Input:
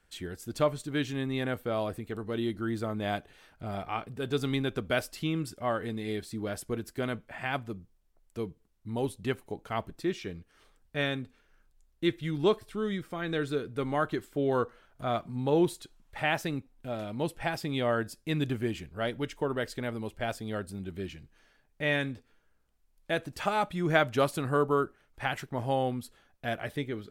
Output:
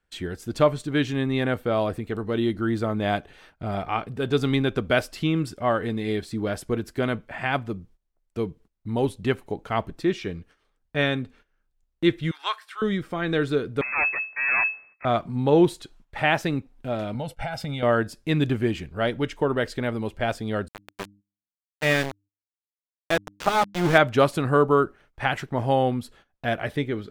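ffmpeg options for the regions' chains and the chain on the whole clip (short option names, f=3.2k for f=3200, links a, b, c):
-filter_complex "[0:a]asettb=1/sr,asplit=3[a][b][c];[a]atrim=end=12.314[d];[b]atrim=start=12.31:end=12.82,asetpts=PTS-STARTPTS,afade=t=in:d=0.004:c=qsin,afade=t=out:st=0.506:d=0.004:c=qsin,highpass=f=990:w=0.5412,highpass=f=990:w=1.3066,equalizer=f=1.6k:w=1.4:g=6.5[e];[c]atrim=start=12.816[f];[d][e]acrossfade=d=0.004:c1=hsin:c2=qsin[g];[g][f]acrossfade=d=0.004:c1=qsin:c2=hsin,asettb=1/sr,asplit=3[h][i][j];[h]atrim=end=13.814[k];[i]atrim=start=13.81:end=15.05,asetpts=PTS-STARTPTS,afade=t=in:d=0.004:c=qsin,afade=t=out:st=1.236:d=0.004:c=qsin,lowshelf=f=160:g=-12,aeval=exprs='abs(val(0))':c=same,lowpass=f=2.2k:t=q:w=0.5098,lowpass=f=2.2k:t=q:w=0.6013,lowpass=f=2.2k:t=q:w=0.9,lowpass=f=2.2k:t=q:w=2.563,afreqshift=-2600[l];[j]atrim=start=15.046[m];[k][l]acrossfade=d=0.004:c1=hsin:c2=qsin[n];[n][m]acrossfade=d=0.004:c1=qsin:c2=hsin,asettb=1/sr,asplit=3[o][p][q];[o]atrim=end=17.144[r];[p]atrim=start=17.14:end=17.83,asetpts=PTS-STARTPTS,afade=t=in:d=0.004:c=qsin,afade=t=out:st=0.686:d=0.004:c=qsin,agate=range=-33dB:threshold=-41dB:ratio=3:release=100:detection=peak,aecho=1:1:1.4:0.95,atrim=end_sample=30429,acompressor=threshold=-33dB:ratio=16:attack=3.2:release=140:knee=1:detection=peak[s];[q]atrim=start=17.826[t];[r][s]acrossfade=d=0.004:c1=hsin:c2=qsin[u];[u][t]acrossfade=d=0.004:c1=qsin:c2=hsin,asettb=1/sr,asplit=3[v][w][x];[v]atrim=end=20.684[y];[w]atrim=start=20.68:end=23.98,asetpts=PTS-STARTPTS,afade=t=in:d=0.004:c=qsin,afade=t=out:st=3.296:d=0.004:c=qsin,aeval=exprs='val(0)*gte(abs(val(0)),0.0335)':c=same,bandreject=f=100.3:t=h:w=4,bandreject=f=200.6:t=h:w=4,bandreject=f=300.9:t=h:w=4[z];[x]atrim=start=23.976[aa];[y][z]acrossfade=d=0.004:c1=hsin:c2=qsin[ab];[ab][aa]acrossfade=d=0.004:c1=qsin:c2=hsin,agate=range=-15dB:threshold=-58dB:ratio=16:detection=peak,highshelf=f=7.1k:g=-10.5,volume=7.5dB"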